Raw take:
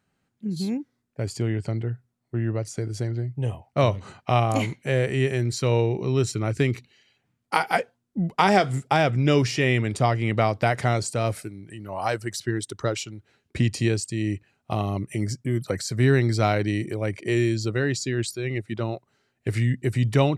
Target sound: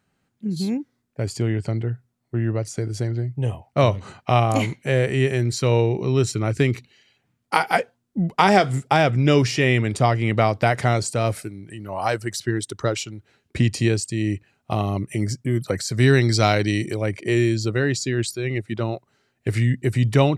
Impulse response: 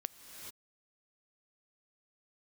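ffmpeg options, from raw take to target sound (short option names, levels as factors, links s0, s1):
-filter_complex "[0:a]asettb=1/sr,asplit=3[s0][s1][s2];[s0]atrim=end=15.944[s3];[s1]atrim=start=15.94:end=17.02,asetpts=PTS-STARTPTS,afade=t=in:d=0.004:c=qsin,afade=t=out:st=1.076:d=0.004:c=qsin,equalizer=f=5400:t=o:w=1.8:g=8.5[s4];[s2]atrim=start=17.016[s5];[s3][s4]acrossfade=d=0.004:c1=hsin:c2=qsin[s6];[s6][s5]acrossfade=d=0.004:c1=qsin:c2=hsin,volume=1.41"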